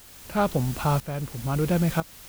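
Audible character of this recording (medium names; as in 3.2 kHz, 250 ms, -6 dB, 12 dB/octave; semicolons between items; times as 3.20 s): a quantiser's noise floor 6-bit, dither triangular; tremolo saw up 1 Hz, depth 75%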